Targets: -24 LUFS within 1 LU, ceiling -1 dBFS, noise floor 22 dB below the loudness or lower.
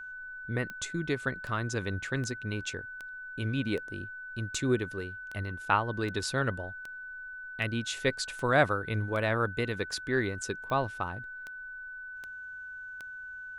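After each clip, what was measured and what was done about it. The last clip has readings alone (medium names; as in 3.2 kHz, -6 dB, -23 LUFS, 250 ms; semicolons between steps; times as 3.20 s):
clicks found 17; steady tone 1.5 kHz; tone level -40 dBFS; loudness -33.0 LUFS; peak level -10.0 dBFS; loudness target -24.0 LUFS
-> de-click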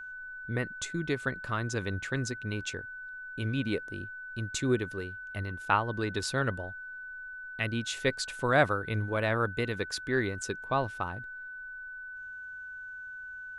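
clicks found 0; steady tone 1.5 kHz; tone level -40 dBFS
-> band-stop 1.5 kHz, Q 30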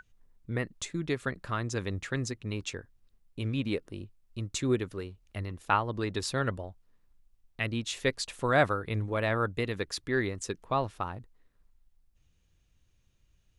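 steady tone not found; loudness -32.0 LUFS; peak level -10.5 dBFS; loudness target -24.0 LUFS
-> trim +8 dB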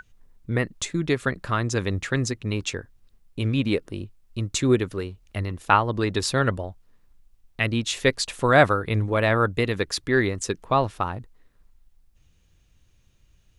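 loudness -24.0 LUFS; peak level -2.5 dBFS; noise floor -61 dBFS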